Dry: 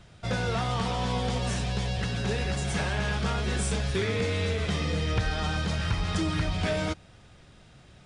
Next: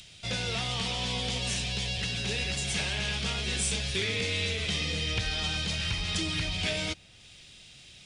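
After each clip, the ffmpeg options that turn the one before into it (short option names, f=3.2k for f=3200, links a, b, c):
-filter_complex "[0:a]highshelf=f=1.9k:t=q:w=1.5:g=10,acrossover=split=580|2400[a][b][c];[c]acompressor=mode=upward:threshold=-39dB:ratio=2.5[d];[a][b][d]amix=inputs=3:normalize=0,volume=-6dB"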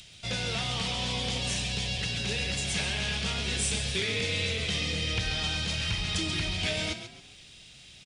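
-filter_complex "[0:a]asplit=5[a][b][c][d][e];[b]adelay=136,afreqshift=34,volume=-10dB[f];[c]adelay=272,afreqshift=68,volume=-19.4dB[g];[d]adelay=408,afreqshift=102,volume=-28.7dB[h];[e]adelay=544,afreqshift=136,volume=-38.1dB[i];[a][f][g][h][i]amix=inputs=5:normalize=0"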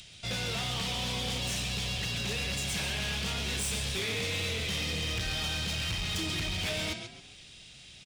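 -af "volume=29.5dB,asoftclip=hard,volume=-29.5dB"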